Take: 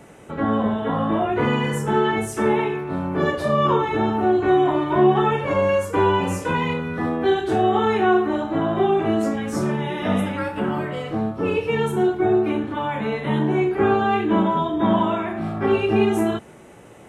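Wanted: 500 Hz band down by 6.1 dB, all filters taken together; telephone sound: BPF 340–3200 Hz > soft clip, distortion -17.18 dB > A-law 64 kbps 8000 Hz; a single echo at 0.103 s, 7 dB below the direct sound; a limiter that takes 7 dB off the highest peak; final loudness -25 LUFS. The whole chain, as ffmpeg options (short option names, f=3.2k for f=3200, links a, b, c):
-af "equalizer=f=500:t=o:g=-6.5,alimiter=limit=-15.5dB:level=0:latency=1,highpass=340,lowpass=3.2k,aecho=1:1:103:0.447,asoftclip=threshold=-20.5dB,volume=3.5dB" -ar 8000 -c:a pcm_alaw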